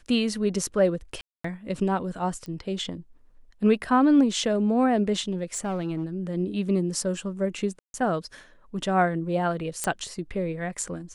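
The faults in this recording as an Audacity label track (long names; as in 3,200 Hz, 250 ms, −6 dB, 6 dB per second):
1.210000	1.440000	drop-out 234 ms
2.460000	2.460000	click −25 dBFS
5.540000	6.040000	clipping −24 dBFS
7.790000	7.940000	drop-out 151 ms
9.840000	9.840000	click −11 dBFS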